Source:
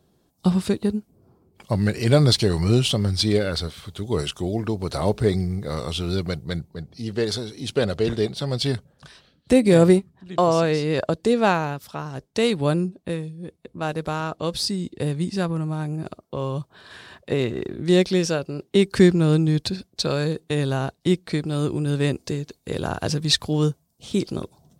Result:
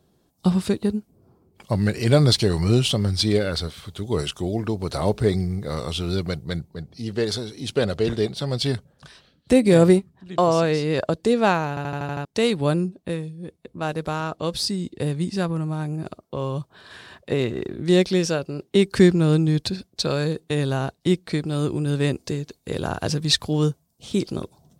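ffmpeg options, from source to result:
-filter_complex "[0:a]asplit=8[s0][s1][s2][s3][s4][s5][s6][s7];[s0]atrim=end=11.772[s8];[s1]atrim=start=11.688:end=11.772[s9];[s2]atrim=start=11.688:end=11.772[s10];[s3]atrim=start=11.688:end=11.772[s11];[s4]atrim=start=11.688:end=11.772[s12];[s5]atrim=start=11.688:end=11.772[s13];[s6]atrim=start=11.688:end=11.772[s14];[s7]atrim=start=12.248[s15];[s8][s9]acrossfade=d=0.004:c1=hsin:c2=hsin[s16];[s16][s10]acrossfade=d=0.004:c1=hsin:c2=hsin[s17];[s17][s11]acrossfade=d=0.004:c1=hsin:c2=hsin[s18];[s18][s12]acrossfade=d=0.004:c1=hsin:c2=hsin[s19];[s19][s13]acrossfade=d=0.004:c1=hsin:c2=hsin[s20];[s20][s14]acrossfade=d=0.004:c1=hsin:c2=hsin[s21];[s21][s15]acrossfade=d=0.004:c1=hsin:c2=hsin"

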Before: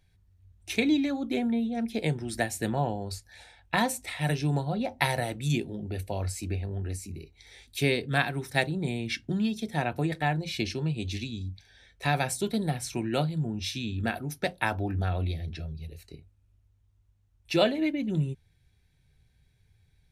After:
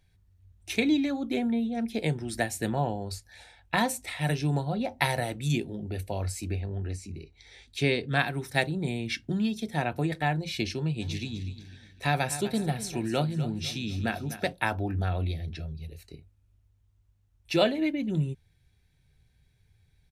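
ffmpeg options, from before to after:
-filter_complex "[0:a]asettb=1/sr,asplit=3[s0][s1][s2];[s0]atrim=end=6.604[s3];[s1]atrim=start=6.6:end=8.19,asetpts=PTS-STARTPTS,afade=t=in:d=0.004:c=qsin,afade=t=out:st=1.586:d=0.004:c=qsin,lowpass=6800[s4];[s2]atrim=start=8.186[s5];[s3][s4]acrossfade=d=0.004:c1=hsin:c2=qsin[s6];[s6][s5]acrossfade=d=0.004:c1=qsin:c2=hsin,asplit=3[s7][s8][s9];[s7]afade=t=out:st=11:d=0.02[s10];[s8]aecho=1:1:250|500|750|1000:0.224|0.0828|0.0306|0.0113,afade=t=in:st=11:d=0.02,afade=t=out:st=14.52:d=0.02[s11];[s9]afade=t=in:st=14.52:d=0.02[s12];[s10][s11][s12]amix=inputs=3:normalize=0"

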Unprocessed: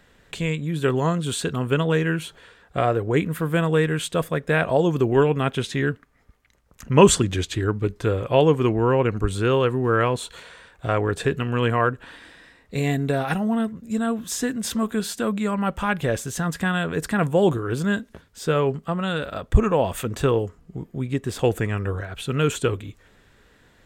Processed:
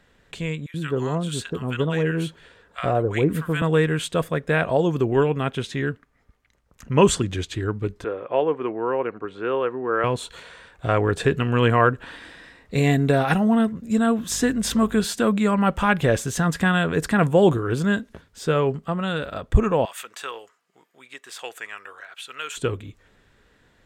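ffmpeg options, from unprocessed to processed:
-filter_complex "[0:a]asettb=1/sr,asplit=3[s0][s1][s2];[s0]atrim=end=0.664[s3];[s1]atrim=start=0.66:end=3.62,asetpts=PTS-STARTPTS,afade=t=in:d=0.004:c=qsin,afade=t=out:st=2.956:d=0.004:c=qsin,acrossover=split=1100[s4][s5];[s4]adelay=80[s6];[s6][s5]amix=inputs=2:normalize=0,atrim=end_sample=130536[s7];[s2]atrim=start=3.616[s8];[s3][s7]acrossfade=d=0.004:c1=hsin:c2=qsin[s9];[s9][s8]acrossfade=d=0.004:c1=qsin:c2=hsin,asettb=1/sr,asplit=3[s10][s11][s12];[s10]atrim=end=8.044[s13];[s11]atrim=start=8.04:end=10.04,asetpts=PTS-STARTPTS,afade=t=in:d=0.004:c=qsin,afade=t=out:st=1.996:d=0.004:c=qsin,highpass=360,lowpass=2000[s14];[s12]atrim=start=10.036[s15];[s13][s14]acrossfade=d=0.004:c1=hsin:c2=qsin[s16];[s16][s15]acrossfade=d=0.004:c1=qsin:c2=hsin,asettb=1/sr,asplit=3[s17][s18][s19];[s17]atrim=end=14.304[s20];[s18]atrim=start=14.3:end=15.05,asetpts=PTS-STARTPTS,afade=t=in:d=0.004:c=qsin,afade=t=out:st=0.746:d=0.004:c=qsin,aeval=exprs='val(0)+0.00631*(sin(2*PI*50*n/s)+sin(2*PI*2*50*n/s)/2+sin(2*PI*3*50*n/s)/3+sin(2*PI*4*50*n/s)/4+sin(2*PI*5*50*n/s)/5)':c=same[s21];[s19]atrim=start=15.046[s22];[s20][s21]acrossfade=d=0.004:c1=hsin:c2=qsin[s23];[s23][s22]acrossfade=d=0.004:c1=qsin:c2=hsin,asettb=1/sr,asplit=3[s24][s25][s26];[s24]atrim=end=19.854[s27];[s25]atrim=start=19.85:end=22.57,asetpts=PTS-STARTPTS,afade=t=in:d=0.004:c=qsin,afade=t=out:st=2.716:d=0.004:c=qsin,highpass=1200[s28];[s26]atrim=start=22.566[s29];[s27][s28]acrossfade=d=0.004:c1=hsin:c2=qsin[s30];[s30][s29]acrossfade=d=0.004:c1=qsin:c2=hsin,dynaudnorm=f=780:g=7:m=3.76,highshelf=f=10000:g=-6.5,volume=0.708"

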